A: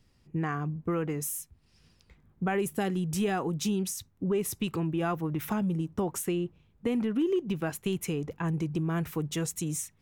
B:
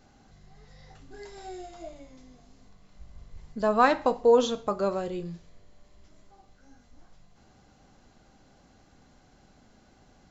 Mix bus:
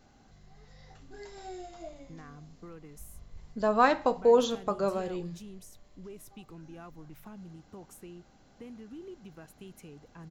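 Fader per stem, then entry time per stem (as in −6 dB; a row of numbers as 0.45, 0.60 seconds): −18.0, −2.0 decibels; 1.75, 0.00 seconds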